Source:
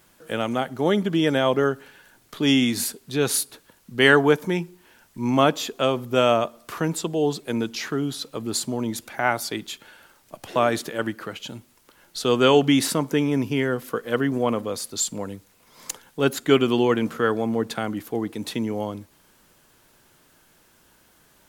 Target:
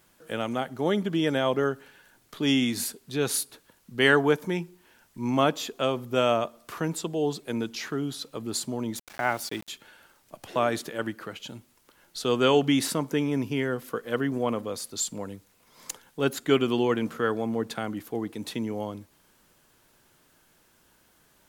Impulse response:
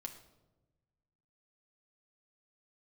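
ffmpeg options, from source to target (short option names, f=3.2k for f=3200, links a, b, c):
-filter_complex "[0:a]asettb=1/sr,asplit=3[a][b][c];[a]atrim=end=8.954[d];[b]atrim=start=8.95:end=9.69,asetpts=PTS-STARTPTS,afade=t=in:d=0.004:c=qsin,afade=t=out:st=0.736:d=0.004:c=qsin,aeval=exprs='val(0)*gte(abs(val(0)),0.0158)':c=same[e];[c]atrim=start=9.686[f];[d][e]acrossfade=d=0.004:c1=hsin:c2=qsin[g];[g][f]acrossfade=d=0.004:c1=qsin:c2=hsin,volume=-4.5dB"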